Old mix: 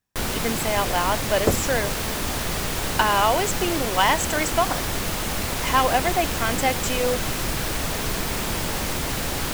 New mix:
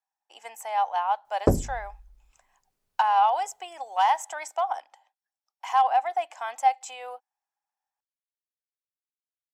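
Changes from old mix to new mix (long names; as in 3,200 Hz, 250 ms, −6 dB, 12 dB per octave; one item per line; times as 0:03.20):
speech: add four-pole ladder high-pass 760 Hz, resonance 80%
first sound: muted
master: add bass and treble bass +3 dB, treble +2 dB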